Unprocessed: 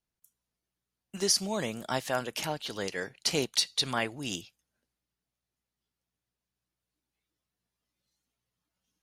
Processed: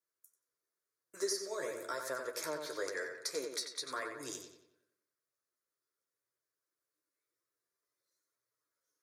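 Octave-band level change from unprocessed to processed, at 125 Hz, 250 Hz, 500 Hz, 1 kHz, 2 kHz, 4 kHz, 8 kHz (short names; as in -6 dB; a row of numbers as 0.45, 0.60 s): -22.0, -12.5, -4.5, -8.0, -6.0, -12.5, -9.0 dB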